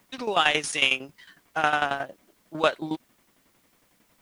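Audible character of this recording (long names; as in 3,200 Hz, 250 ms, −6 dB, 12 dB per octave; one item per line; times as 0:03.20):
tremolo saw down 11 Hz, depth 80%
a quantiser's noise floor 12 bits, dither triangular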